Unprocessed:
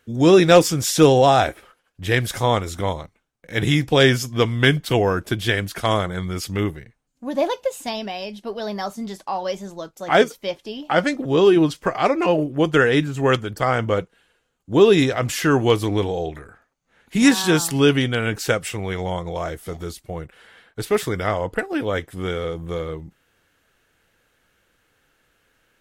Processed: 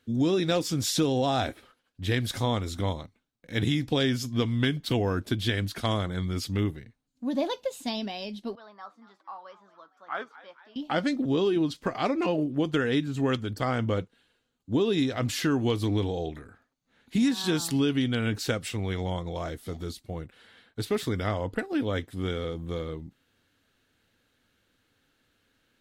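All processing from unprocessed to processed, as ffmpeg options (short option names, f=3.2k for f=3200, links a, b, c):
-filter_complex "[0:a]asettb=1/sr,asplit=3[a][b][c];[a]atrim=end=8.554[d];[b]atrim=start=8.55:end=10.76,asetpts=PTS-STARTPTS,afade=t=in:d=0.004:c=qsin,afade=t=out:st=2.206:d=0.004:c=qsin,bandpass=f=1.2k:t=q:w=3.7,asplit=6[e][f][g][h][i][j];[f]adelay=229,afreqshift=97,volume=-17.5dB[k];[g]adelay=458,afreqshift=194,volume=-22.7dB[l];[h]adelay=687,afreqshift=291,volume=-27.9dB[m];[i]adelay=916,afreqshift=388,volume=-33.1dB[n];[j]adelay=1145,afreqshift=485,volume=-38.3dB[o];[e][k][l][m][n][o]amix=inputs=6:normalize=0,atrim=end_sample=97461[p];[c]atrim=start=10.756[q];[d][p]acrossfade=d=0.004:c1=hsin:c2=qsin[r];[r][q]acrossfade=d=0.004:c1=qsin:c2=hsin,equalizer=f=100:t=o:w=0.67:g=7,equalizer=f=250:t=o:w=0.67:g=10,equalizer=f=4k:t=o:w=0.67:g=8,acompressor=threshold=-13dB:ratio=6,volume=-8.5dB"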